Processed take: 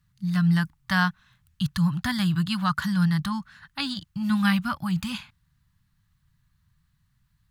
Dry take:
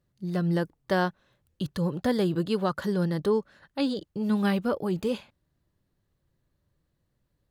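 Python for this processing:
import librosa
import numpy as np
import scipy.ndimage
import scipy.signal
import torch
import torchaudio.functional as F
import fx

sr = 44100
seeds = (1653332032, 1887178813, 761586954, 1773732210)

y = scipy.signal.sosfilt(scipy.signal.cheby1(2, 1.0, [160.0, 1200.0], 'bandstop', fs=sr, output='sos'), x)
y = F.gain(torch.from_numpy(y), 8.0).numpy()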